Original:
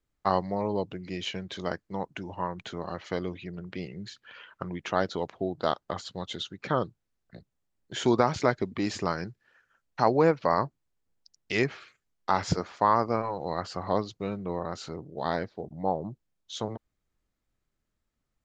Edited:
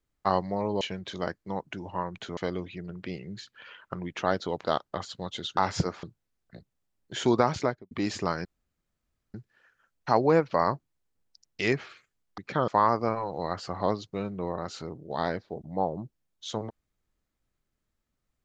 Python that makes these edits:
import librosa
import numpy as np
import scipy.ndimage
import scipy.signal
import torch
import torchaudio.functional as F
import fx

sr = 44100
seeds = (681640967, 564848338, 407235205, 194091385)

y = fx.studio_fade_out(x, sr, start_s=8.34, length_s=0.37)
y = fx.edit(y, sr, fx.cut(start_s=0.81, length_s=0.44),
    fx.cut(start_s=2.81, length_s=0.25),
    fx.cut(start_s=5.33, length_s=0.27),
    fx.swap(start_s=6.53, length_s=0.3, other_s=12.29, other_length_s=0.46),
    fx.insert_room_tone(at_s=9.25, length_s=0.89), tone=tone)